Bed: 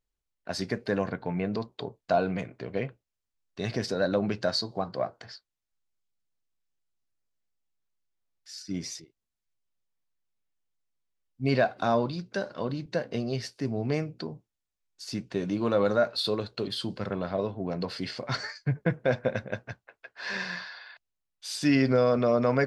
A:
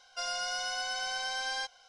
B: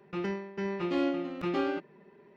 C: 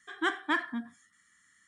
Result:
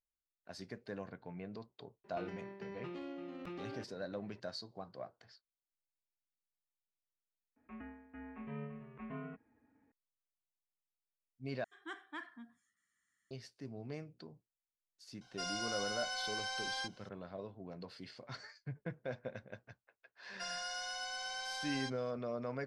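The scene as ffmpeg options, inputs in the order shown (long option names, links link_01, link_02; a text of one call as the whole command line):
ffmpeg -i bed.wav -i cue0.wav -i cue1.wav -i cue2.wav -filter_complex "[2:a]asplit=2[link_01][link_02];[1:a]asplit=2[link_03][link_04];[0:a]volume=-16.5dB[link_05];[link_01]acompressor=threshold=-37dB:ratio=6:attack=3.2:release=140:knee=1:detection=peak[link_06];[link_02]highpass=frequency=260:width_type=q:width=0.5412,highpass=frequency=260:width_type=q:width=1.307,lowpass=frequency=2600:width_type=q:width=0.5176,lowpass=frequency=2600:width_type=q:width=0.7071,lowpass=frequency=2600:width_type=q:width=1.932,afreqshift=-130[link_07];[link_05]asplit=3[link_08][link_09][link_10];[link_08]atrim=end=7.564[link_11];[link_07]atrim=end=2.36,asetpts=PTS-STARTPTS,volume=-14.5dB[link_12];[link_09]atrim=start=9.916:end=11.644[link_13];[3:a]atrim=end=1.67,asetpts=PTS-STARTPTS,volume=-17.5dB[link_14];[link_10]atrim=start=13.306[link_15];[link_06]atrim=end=2.36,asetpts=PTS-STARTPTS,volume=-5.5dB,afade=type=in:duration=0.004:curve=hsin,afade=type=out:start_time=2.356:duration=0.004:curve=hsin,adelay=2040[link_16];[link_03]atrim=end=1.88,asetpts=PTS-STARTPTS,volume=-5.5dB,afade=type=in:duration=0.004:curve=hsin,afade=type=out:start_time=1.876:duration=0.004:curve=hsin,adelay=15210[link_17];[link_04]atrim=end=1.88,asetpts=PTS-STARTPTS,volume=-7.5dB,afade=type=in:duration=0.004:curve=hsin,afade=type=out:start_time=1.876:duration=0.004:curve=hsin,adelay=20230[link_18];[link_11][link_12]acrossfade=duration=0.004:curve1=hsin:curve2=hsin[link_19];[link_19][link_13]acrossfade=duration=0.004:curve1=hsin:curve2=hsin[link_20];[link_20][link_14]acrossfade=duration=0.004:curve1=hsin:curve2=hsin[link_21];[link_21][link_15]acrossfade=duration=0.004:curve1=hsin:curve2=hsin[link_22];[link_22][link_16][link_17][link_18]amix=inputs=4:normalize=0" out.wav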